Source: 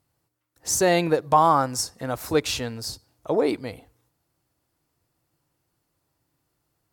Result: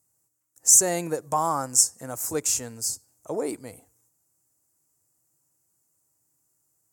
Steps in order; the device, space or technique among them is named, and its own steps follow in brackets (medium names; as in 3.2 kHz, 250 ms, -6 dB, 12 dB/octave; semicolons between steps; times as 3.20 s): budget condenser microphone (high-pass 82 Hz; resonant high shelf 5.2 kHz +12.5 dB, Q 3); trim -7 dB